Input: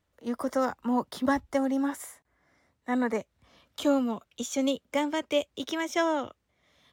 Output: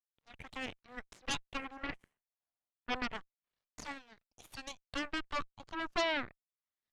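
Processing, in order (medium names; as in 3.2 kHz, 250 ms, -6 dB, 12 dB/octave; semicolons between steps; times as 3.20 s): LFO band-pass sine 0.3 Hz 770–2300 Hz; Chebyshev shaper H 3 -10 dB, 7 -39 dB, 8 -12 dB, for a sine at -20.5 dBFS; trim +1 dB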